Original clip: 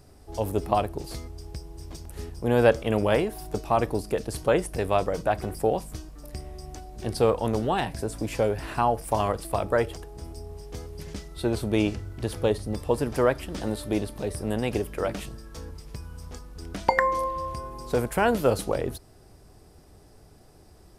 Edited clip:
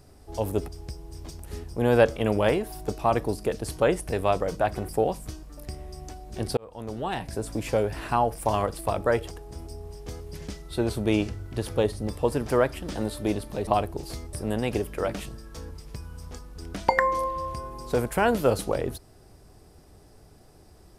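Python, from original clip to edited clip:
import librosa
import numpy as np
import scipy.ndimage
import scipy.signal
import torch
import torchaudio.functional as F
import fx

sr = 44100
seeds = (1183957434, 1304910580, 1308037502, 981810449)

y = fx.edit(x, sr, fx.move(start_s=0.68, length_s=0.66, to_s=14.33),
    fx.fade_in_span(start_s=7.23, length_s=0.88), tone=tone)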